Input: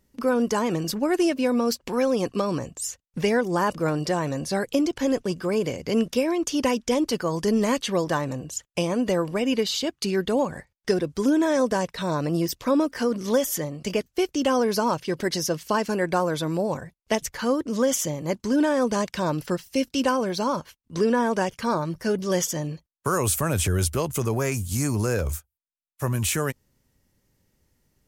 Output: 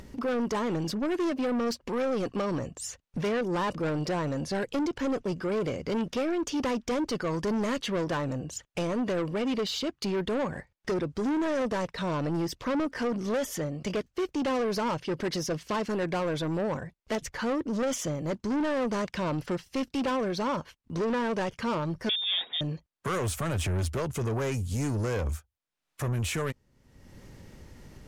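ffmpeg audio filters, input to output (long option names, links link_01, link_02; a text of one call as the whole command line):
ffmpeg -i in.wav -filter_complex "[0:a]aemphasis=mode=reproduction:type=50fm,acompressor=mode=upward:threshold=-31dB:ratio=2.5,asoftclip=type=tanh:threshold=-25dB,asettb=1/sr,asplit=3[link_01][link_02][link_03];[link_01]atrim=end=22.094[link_04];[link_02]atrim=start=22.09:end=22.61,asetpts=PTS-STARTPTS,afade=type=in:duration=0.004:curve=qsin,afade=type=out:start_time=0.516:duration=0.004:curve=qsin,lowpass=frequency=3200:width_type=q:width=0.5098,lowpass=frequency=3200:width_type=q:width=0.6013,lowpass=frequency=3200:width_type=q:width=0.9,lowpass=frequency=3200:width_type=q:width=2.563,afreqshift=-3800[link_05];[link_03]atrim=start=22.606[link_06];[link_04][link_05]acrossfade=duration=0.004:curve1=hsin:curve2=qsin[link_07];[link_07][link_06]acrossfade=duration=0.004:curve1=qsin:curve2=hsin" out.wav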